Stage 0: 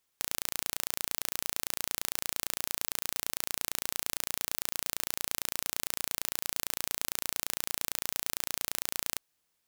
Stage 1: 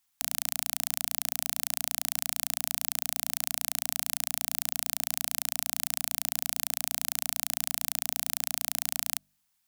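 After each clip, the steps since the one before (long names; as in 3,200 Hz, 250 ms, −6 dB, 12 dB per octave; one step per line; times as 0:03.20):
elliptic band-stop filter 260–720 Hz, stop band 40 dB
high-shelf EQ 6,500 Hz +4.5 dB
hum removal 49.27 Hz, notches 13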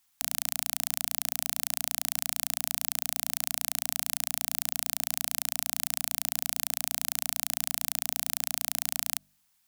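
brickwall limiter −6 dBFS, peak gain reduction 4.5 dB
level +4.5 dB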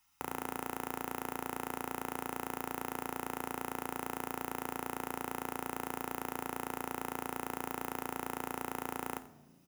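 stylus tracing distortion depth 0.069 ms
single-tap delay 88 ms −18.5 dB
convolution reverb RT60 1.2 s, pre-delay 3 ms, DRR 12.5 dB
level +2.5 dB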